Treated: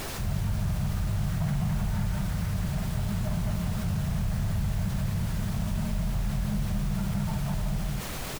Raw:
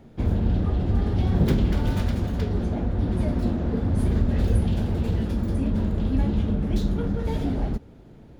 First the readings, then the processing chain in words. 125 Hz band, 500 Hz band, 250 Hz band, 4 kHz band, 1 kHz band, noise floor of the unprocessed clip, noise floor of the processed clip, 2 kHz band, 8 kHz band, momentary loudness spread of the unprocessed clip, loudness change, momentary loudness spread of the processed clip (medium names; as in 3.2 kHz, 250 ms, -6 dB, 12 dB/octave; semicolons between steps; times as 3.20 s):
-4.0 dB, -11.0 dB, -7.0 dB, +1.0 dB, -2.5 dB, -47 dBFS, -34 dBFS, +0.5 dB, no reading, 4 LU, -5.5 dB, 2 LU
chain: peaking EQ 770 Hz -5.5 dB 0.43 oct; hum notches 60/120/180 Hz; rotary cabinet horn 6 Hz; low-pass 2 kHz 24 dB/octave; peaking EQ 130 Hz +5 dB 0.36 oct; comb 6.5 ms, depth 47%; loudspeakers at several distances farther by 17 m -4 dB, 73 m -2 dB; hard clipper -19 dBFS, distortion -11 dB; Chebyshev band-stop 210–630 Hz, order 4; added noise pink -39 dBFS; level flattener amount 50%; trim -5 dB